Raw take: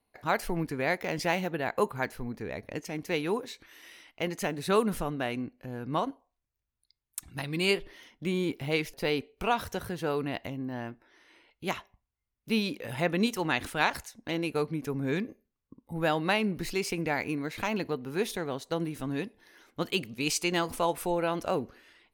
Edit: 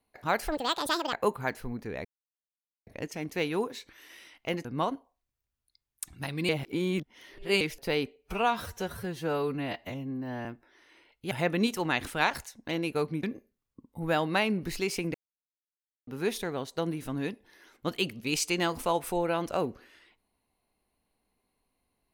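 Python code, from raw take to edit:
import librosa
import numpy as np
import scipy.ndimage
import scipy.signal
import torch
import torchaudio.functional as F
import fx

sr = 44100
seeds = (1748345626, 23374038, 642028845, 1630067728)

y = fx.edit(x, sr, fx.speed_span(start_s=0.47, length_s=1.21, speed=1.84),
    fx.insert_silence(at_s=2.6, length_s=0.82),
    fx.cut(start_s=4.38, length_s=1.42),
    fx.reverse_span(start_s=7.64, length_s=1.12),
    fx.stretch_span(start_s=9.31, length_s=1.53, factor=1.5),
    fx.cut(start_s=11.7, length_s=1.21),
    fx.cut(start_s=14.83, length_s=0.34),
    fx.silence(start_s=17.08, length_s=0.93), tone=tone)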